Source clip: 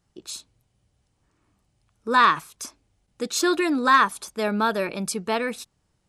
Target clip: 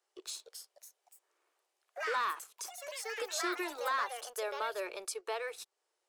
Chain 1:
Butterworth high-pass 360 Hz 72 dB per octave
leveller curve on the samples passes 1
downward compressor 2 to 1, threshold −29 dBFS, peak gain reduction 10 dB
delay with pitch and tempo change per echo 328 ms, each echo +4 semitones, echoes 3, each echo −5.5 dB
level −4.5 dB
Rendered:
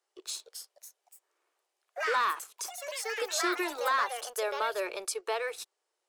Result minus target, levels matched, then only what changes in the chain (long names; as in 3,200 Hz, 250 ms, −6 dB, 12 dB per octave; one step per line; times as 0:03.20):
downward compressor: peak gain reduction −5 dB
change: downward compressor 2 to 1, threshold −39.5 dBFS, peak gain reduction 15.5 dB